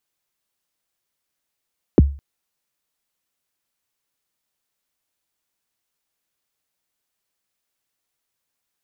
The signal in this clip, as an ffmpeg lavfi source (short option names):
-f lavfi -i "aevalsrc='0.631*pow(10,-3*t/0.36)*sin(2*PI*(480*0.024/log(70/480)*(exp(log(70/480)*min(t,0.024)/0.024)-1)+70*max(t-0.024,0)))':d=0.21:s=44100"